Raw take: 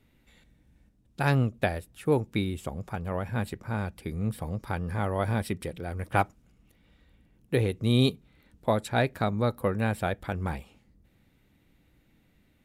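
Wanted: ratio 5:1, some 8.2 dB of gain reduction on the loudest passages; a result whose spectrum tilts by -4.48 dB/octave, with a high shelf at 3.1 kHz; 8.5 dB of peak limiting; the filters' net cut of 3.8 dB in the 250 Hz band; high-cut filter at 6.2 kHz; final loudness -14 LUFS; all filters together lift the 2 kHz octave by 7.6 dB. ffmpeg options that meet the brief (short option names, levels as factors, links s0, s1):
-af "lowpass=6200,equalizer=f=250:t=o:g=-5,equalizer=f=2000:t=o:g=8,highshelf=f=3100:g=6.5,acompressor=threshold=0.0501:ratio=5,volume=10,alimiter=limit=1:level=0:latency=1"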